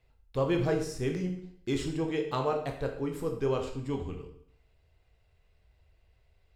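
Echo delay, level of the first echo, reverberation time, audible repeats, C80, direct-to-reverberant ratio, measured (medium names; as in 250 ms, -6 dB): no echo, no echo, 0.60 s, no echo, 10.5 dB, 3.0 dB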